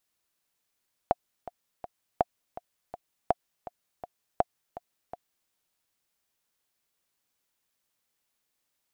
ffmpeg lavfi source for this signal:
-f lavfi -i "aevalsrc='pow(10,(-8.5-16.5*gte(mod(t,3*60/164),60/164))/20)*sin(2*PI*710*mod(t,60/164))*exp(-6.91*mod(t,60/164)/0.03)':d=4.39:s=44100"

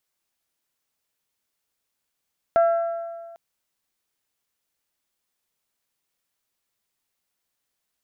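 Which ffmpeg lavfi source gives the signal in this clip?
-f lavfi -i "aevalsrc='0.224*pow(10,-3*t/1.72)*sin(2*PI*674*t)+0.0596*pow(10,-3*t/1.397)*sin(2*PI*1348*t)+0.0158*pow(10,-3*t/1.323)*sin(2*PI*1617.6*t)+0.00422*pow(10,-3*t/1.237)*sin(2*PI*2022*t)+0.00112*pow(10,-3*t/1.135)*sin(2*PI*2696*t)':d=0.8:s=44100"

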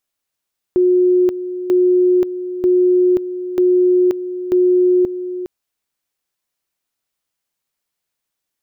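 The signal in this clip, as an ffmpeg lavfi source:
-f lavfi -i "aevalsrc='pow(10,(-9.5-12*gte(mod(t,0.94),0.53))/20)*sin(2*PI*362*t)':d=4.7:s=44100"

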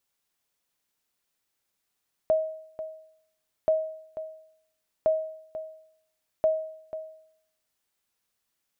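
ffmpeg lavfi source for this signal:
-f lavfi -i "aevalsrc='0.158*(sin(2*PI*633*mod(t,1.38))*exp(-6.91*mod(t,1.38)/0.69)+0.224*sin(2*PI*633*max(mod(t,1.38)-0.49,0))*exp(-6.91*max(mod(t,1.38)-0.49,0)/0.69))':d=5.52:s=44100"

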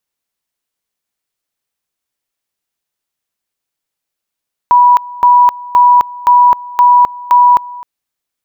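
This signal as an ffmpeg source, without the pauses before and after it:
-f lavfi -i "aevalsrc='pow(10,(-3-21*gte(mod(t,0.52),0.26))/20)*sin(2*PI*978*t)':d=3.12:s=44100"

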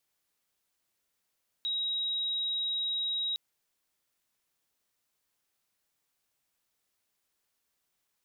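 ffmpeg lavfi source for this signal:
-f lavfi -i "aevalsrc='0.0355*sin(2*PI*3820*t)':d=1.71:s=44100"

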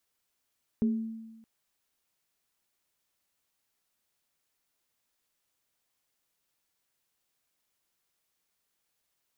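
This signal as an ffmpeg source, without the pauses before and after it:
-f lavfi -i "aevalsrc='0.0841*pow(10,-3*t/1.18)*sin(2*PI*224*t)+0.0211*pow(10,-3*t/0.42)*sin(2*PI*416*t)':d=0.62:s=44100"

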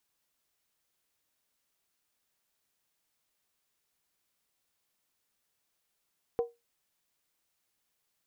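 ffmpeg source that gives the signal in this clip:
-f lavfi -i "aevalsrc='0.0794*pow(10,-3*t/0.21)*sin(2*PI*471*t)+0.0211*pow(10,-3*t/0.166)*sin(2*PI*750.8*t)+0.00562*pow(10,-3*t/0.144)*sin(2*PI*1006.1*t)+0.0015*pow(10,-3*t/0.139)*sin(2*PI*1081.4*t)+0.000398*pow(10,-3*t/0.129)*sin(2*PI*1249.6*t)':d=0.63:s=44100"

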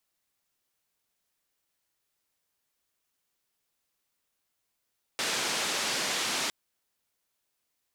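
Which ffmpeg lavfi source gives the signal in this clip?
-f lavfi -i "anoisesrc=c=white:d=1.31:r=44100:seed=1,highpass=f=190,lowpass=f=6000,volume=-20.1dB"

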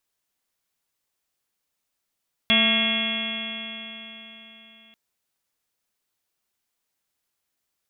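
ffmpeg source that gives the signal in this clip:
-f lavfi -i "aevalsrc='0.0708*pow(10,-3*t/3.99)*sin(2*PI*221.23*t)+0.00944*pow(10,-3*t/3.99)*sin(2*PI*443.85*t)+0.0376*pow(10,-3*t/3.99)*sin(2*PI*669.24*t)+0.01*pow(10,-3*t/3.99)*sin(2*PI*898.73*t)+0.0211*pow(10,-3*t/3.99)*sin(2*PI*1133.64*t)+0.0126*pow(10,-3*t/3.99)*sin(2*PI*1375.21*t)+0.0224*pow(10,-3*t/3.99)*sin(2*PI*1624.64*t)+0.0251*pow(10,-3*t/3.99)*sin(2*PI*1883.07*t)+0.0631*pow(10,-3*t/3.99)*sin(2*PI*2151.52*t)+0.0376*pow(10,-3*t/3.99)*sin(2*PI*2431*t)+0.0708*pow(10,-3*t/3.99)*sin(2*PI*2722.39*t)+0.0188*pow(10,-3*t/3.99)*sin(2*PI*3026.54*t)+0.133*pow(10,-3*t/3.99)*sin(2*PI*3344.18*t)':d=2.44:s=44100"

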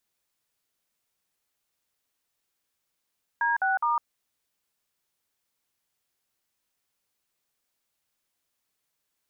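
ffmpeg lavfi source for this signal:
-f lavfi -i "aevalsrc='0.0596*clip(min(mod(t,0.207),0.156-mod(t,0.207))/0.002,0,1)*(eq(floor(t/0.207),0)*(sin(2*PI*941*mod(t,0.207))+sin(2*PI*1633*mod(t,0.207)))+eq(floor(t/0.207),1)*(sin(2*PI*770*mod(t,0.207))+sin(2*PI*1477*mod(t,0.207)))+eq(floor(t/0.207),2)*(sin(2*PI*941*mod(t,0.207))+sin(2*PI*1209*mod(t,0.207))))':d=0.621:s=44100"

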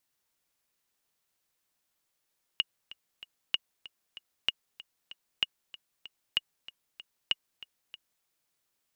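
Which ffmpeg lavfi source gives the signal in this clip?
-f lavfi -i "aevalsrc='pow(10,(-12-19*gte(mod(t,3*60/191),60/191))/20)*sin(2*PI*2870*mod(t,60/191))*exp(-6.91*mod(t,60/191)/0.03)':d=5.65:s=44100"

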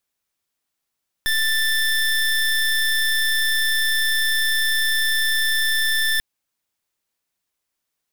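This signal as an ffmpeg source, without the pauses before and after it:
-f lavfi -i "aevalsrc='0.106*(2*lt(mod(1770*t,1),0.24)-1)':d=4.94:s=44100"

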